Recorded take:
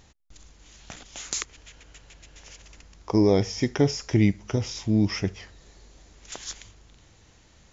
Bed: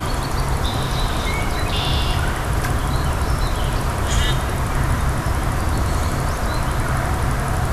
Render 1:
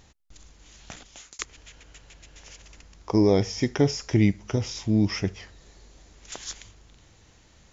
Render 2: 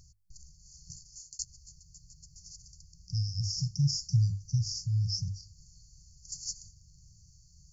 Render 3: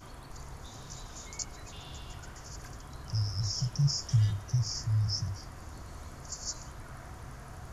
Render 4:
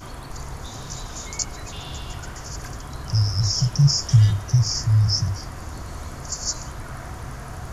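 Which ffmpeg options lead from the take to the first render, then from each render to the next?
-filter_complex "[0:a]asplit=2[s0][s1];[s0]atrim=end=1.39,asetpts=PTS-STARTPTS,afade=t=out:st=0.94:d=0.45[s2];[s1]atrim=start=1.39,asetpts=PTS-STARTPTS,afade=t=in:d=0.004:c=hsin[s3];[s2][s3]concat=n=2:v=0:a=1"
-af "bandreject=f=50:t=h:w=6,bandreject=f=100:t=h:w=6,afftfilt=real='re*(1-between(b*sr/4096,180,4300))':imag='im*(1-between(b*sr/4096,180,4300))':win_size=4096:overlap=0.75"
-filter_complex "[1:a]volume=0.0531[s0];[0:a][s0]amix=inputs=2:normalize=0"
-af "volume=3.55"

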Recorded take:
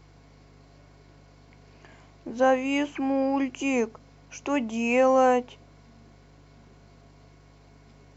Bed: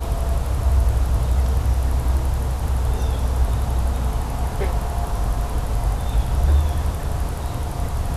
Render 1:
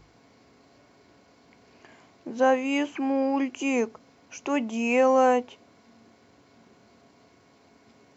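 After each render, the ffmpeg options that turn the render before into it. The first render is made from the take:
-af "bandreject=f=50:t=h:w=4,bandreject=f=100:t=h:w=4,bandreject=f=150:t=h:w=4"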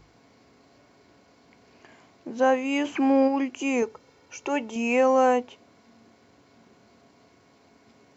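-filter_complex "[0:a]asplit=3[s0][s1][s2];[s0]afade=t=out:st=2.84:d=0.02[s3];[s1]acontrast=36,afade=t=in:st=2.84:d=0.02,afade=t=out:st=3.27:d=0.02[s4];[s2]afade=t=in:st=3.27:d=0.02[s5];[s3][s4][s5]amix=inputs=3:normalize=0,asettb=1/sr,asplit=3[s6][s7][s8];[s6]atrim=end=3.824[s9];[s7]atrim=start=3.82:end=4.76,asetpts=PTS-STARTPTS,afade=t=in:d=0.004:c=qsin,afade=t=out:st=0.936:d=0.004:c=qsin,aecho=1:1:2.2:0.53,atrim=end_sample=41454[s10];[s8]atrim=start=4.756[s11];[s9][s10]acrossfade=d=0.004:c1=hsin:c2=qsin[s12];[s12][s11]acrossfade=d=0.004:c1=qsin:c2=hsin"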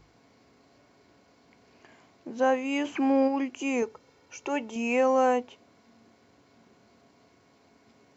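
-af "volume=0.708"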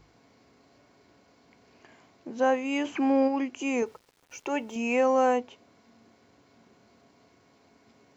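-filter_complex "[0:a]asettb=1/sr,asplit=3[s0][s1][s2];[s0]atrim=end=3.864[s3];[s1]atrim=start=3.86:end=4.79,asetpts=PTS-STARTPTS,afade=t=in:d=0.004:c=qsin,afade=t=out:st=0.926:d=0.004:c=qsin,aeval=exprs='val(0)*gte(abs(val(0)),0.00168)':c=same[s4];[s2]atrim=start=4.786[s5];[s3][s4]acrossfade=d=0.004:c1=hsin:c2=qsin[s6];[s6][s5]acrossfade=d=0.004:c1=qsin:c2=hsin"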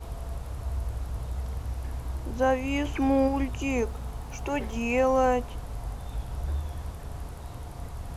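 -filter_complex "[1:a]volume=0.2[s0];[0:a][s0]amix=inputs=2:normalize=0"

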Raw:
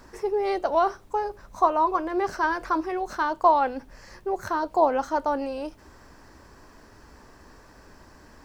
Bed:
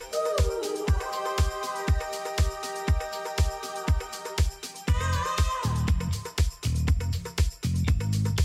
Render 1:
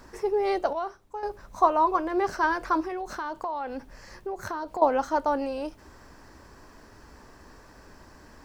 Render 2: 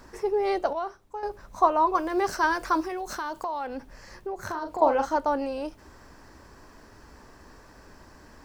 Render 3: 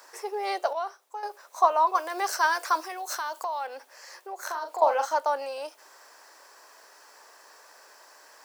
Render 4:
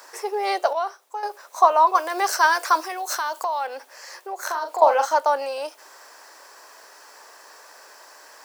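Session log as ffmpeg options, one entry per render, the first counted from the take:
-filter_complex "[0:a]asettb=1/sr,asplit=3[s0][s1][s2];[s0]atrim=end=2.834[s3];[s1]atrim=start=2.83:end=4.82,asetpts=PTS-STARTPTS,afade=t=in:d=0.004:c=qsin,afade=t=out:st=1.986:d=0.004:c=qsin,acompressor=threshold=0.0355:ratio=6:attack=3.2:release=140:knee=1:detection=peak[s4];[s2]atrim=start=4.816[s5];[s3][s4]acrossfade=d=0.004:c1=hsin:c2=qsin[s6];[s6][s5]acrossfade=d=0.004:c1=qsin:c2=hsin,asplit=3[s7][s8][s9];[s7]atrim=end=0.732[s10];[s8]atrim=start=0.728:end=1.232,asetpts=PTS-STARTPTS,volume=0.316[s11];[s9]atrim=start=1.228[s12];[s10][s11]acrossfade=d=0.004:c1=hsin:c2=hsin[s13];[s13][s12]acrossfade=d=0.004:c1=hsin:c2=hsin"
-filter_complex "[0:a]asettb=1/sr,asplit=3[s0][s1][s2];[s0]atrim=end=1.954[s3];[s1]atrim=start=1.95:end=3.67,asetpts=PTS-STARTPTS,afade=t=in:d=0.004:c=qsin,afade=t=out:st=1.716:d=0.004:c=qsin,highshelf=f=4500:g=11[s4];[s2]atrim=start=3.666[s5];[s3][s4]acrossfade=d=0.004:c1=hsin:c2=qsin[s6];[s6][s5]acrossfade=d=0.004:c1=qsin:c2=hsin,asettb=1/sr,asplit=3[s7][s8][s9];[s7]atrim=end=4.444[s10];[s8]atrim=start=4.44:end=5.16,asetpts=PTS-STARTPTS,afade=t=in:d=0.004:c=qsin,afade=t=out:st=0.716:d=0.004:c=qsin,asplit=2[s11][s12];[s12]adelay=41,volume=0.473[s13];[s11][s13]amix=inputs=2:normalize=0,atrim=end_sample=31752[s14];[s9]atrim=start=5.156[s15];[s10][s14]acrossfade=d=0.004:c1=hsin:c2=qsin[s16];[s16][s15]acrossfade=d=0.004:c1=qsin:c2=hsin"
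-af "highpass=f=520:w=0.5412,highpass=f=520:w=1.3066,highshelf=f=4900:g=9.5"
-af "volume=2,alimiter=limit=0.708:level=0:latency=1"

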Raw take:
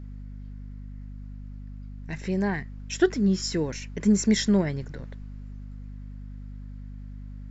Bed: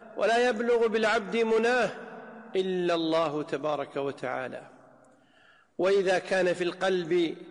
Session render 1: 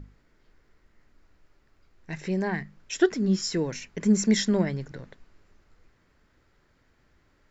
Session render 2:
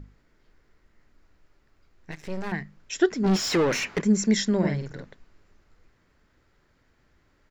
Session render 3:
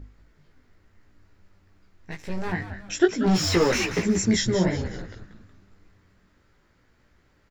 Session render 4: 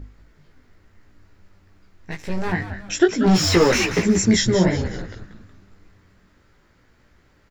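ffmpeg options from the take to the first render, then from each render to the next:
-af "bandreject=f=50:t=h:w=6,bandreject=f=100:t=h:w=6,bandreject=f=150:t=h:w=6,bandreject=f=200:t=h:w=6,bandreject=f=250:t=h:w=6"
-filter_complex "[0:a]asettb=1/sr,asplit=3[s0][s1][s2];[s0]atrim=end=2.114[s3];[s1]atrim=start=2.11:end=2.52,asetpts=PTS-STARTPTS,afade=t=in:d=0.004:c=qsin,afade=t=out:st=0.406:d=0.004:c=qsin,aeval=exprs='max(val(0),0)':c=same[s4];[s2]atrim=start=2.516[s5];[s3][s4]acrossfade=d=0.004:c1=hsin:c2=qsin[s6];[s6][s5]acrossfade=d=0.004:c1=qsin:c2=hsin,asplit=3[s7][s8][s9];[s7]afade=t=out:st=3.23:d=0.02[s10];[s8]asplit=2[s11][s12];[s12]highpass=f=720:p=1,volume=28.2,asoftclip=type=tanh:threshold=0.2[s13];[s11][s13]amix=inputs=2:normalize=0,lowpass=f=2100:p=1,volume=0.501,afade=t=in:st=3.23:d=0.02,afade=t=out:st=4:d=0.02[s14];[s9]afade=t=in:st=4:d=0.02[s15];[s10][s14][s15]amix=inputs=3:normalize=0,asplit=3[s16][s17][s18];[s16]afade=t=out:st=4.62:d=0.02[s19];[s17]asplit=2[s20][s21];[s21]adelay=49,volume=0.75[s22];[s20][s22]amix=inputs=2:normalize=0,afade=t=in:st=4.62:d=0.02,afade=t=out:st=5.02:d=0.02[s23];[s18]afade=t=in:st=5.02:d=0.02[s24];[s19][s23][s24]amix=inputs=3:normalize=0"
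-filter_complex "[0:a]asplit=2[s0][s1];[s1]adelay=17,volume=0.708[s2];[s0][s2]amix=inputs=2:normalize=0,asplit=2[s3][s4];[s4]asplit=4[s5][s6][s7][s8];[s5]adelay=184,afreqshift=-100,volume=0.316[s9];[s6]adelay=368,afreqshift=-200,volume=0.133[s10];[s7]adelay=552,afreqshift=-300,volume=0.0556[s11];[s8]adelay=736,afreqshift=-400,volume=0.0234[s12];[s9][s10][s11][s12]amix=inputs=4:normalize=0[s13];[s3][s13]amix=inputs=2:normalize=0"
-af "volume=1.78,alimiter=limit=0.708:level=0:latency=1"

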